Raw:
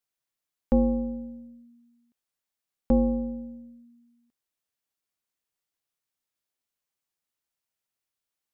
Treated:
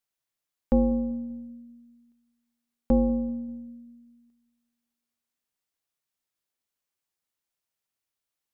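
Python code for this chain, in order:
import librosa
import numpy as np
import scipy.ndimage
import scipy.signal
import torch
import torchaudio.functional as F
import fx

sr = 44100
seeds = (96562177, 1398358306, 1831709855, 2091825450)

y = fx.echo_filtered(x, sr, ms=194, feedback_pct=45, hz=810.0, wet_db=-19.0)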